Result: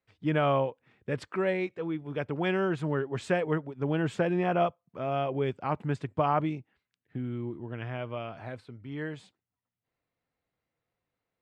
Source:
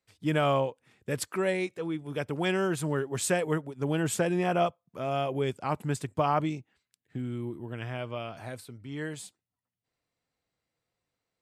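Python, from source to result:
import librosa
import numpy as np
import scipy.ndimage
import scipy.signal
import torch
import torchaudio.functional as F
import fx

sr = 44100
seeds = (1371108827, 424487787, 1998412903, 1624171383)

y = scipy.signal.sosfilt(scipy.signal.butter(2, 2800.0, 'lowpass', fs=sr, output='sos'), x)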